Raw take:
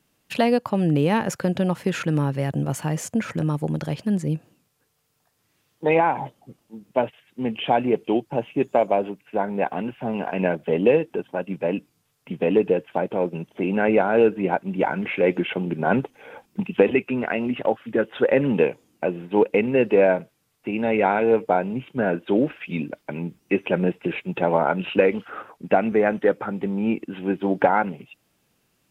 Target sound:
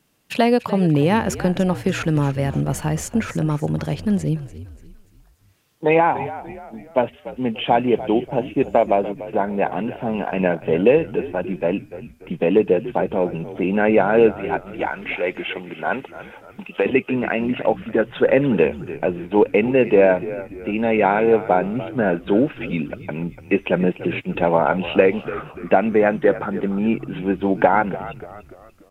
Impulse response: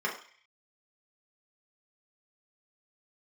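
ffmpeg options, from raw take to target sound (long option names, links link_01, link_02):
-filter_complex "[0:a]asettb=1/sr,asplit=3[link_01][link_02][link_03];[link_01]atrim=end=14.324[link_04];[link_02]atrim=start=14.32:end=16.86,asetpts=PTS-STARTPTS,afade=type=in:duration=0.004:curve=qsin,afade=type=out:start_time=2.536:duration=0.004:curve=qsin,highpass=frequency=920:poles=1[link_05];[link_03]atrim=start=16.856[link_06];[link_04][link_05]acrossfade=duration=0.004:curve1=hsin:curve2=qsin[link_07];[link_07][link_06]acrossfade=duration=0.004:curve1=qsin:curve2=hsin,asplit=5[link_08][link_09][link_10][link_11][link_12];[link_09]adelay=291,afreqshift=-63,volume=-14.5dB[link_13];[link_10]adelay=582,afreqshift=-126,volume=-21.8dB[link_14];[link_11]adelay=873,afreqshift=-189,volume=-29.2dB[link_15];[link_12]adelay=1164,afreqshift=-252,volume=-36.5dB[link_16];[link_08][link_13][link_14][link_15][link_16]amix=inputs=5:normalize=0,volume=3dB"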